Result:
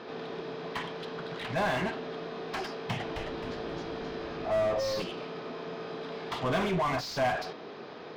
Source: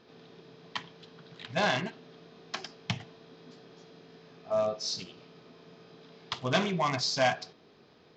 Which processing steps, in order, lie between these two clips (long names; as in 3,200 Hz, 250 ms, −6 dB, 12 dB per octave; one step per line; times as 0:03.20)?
mid-hump overdrive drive 28 dB, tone 1,000 Hz, clips at −22.5 dBFS
0:02.73–0:05.02: echo with shifted repeats 264 ms, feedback 41%, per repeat −110 Hz, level −5 dB
level +1 dB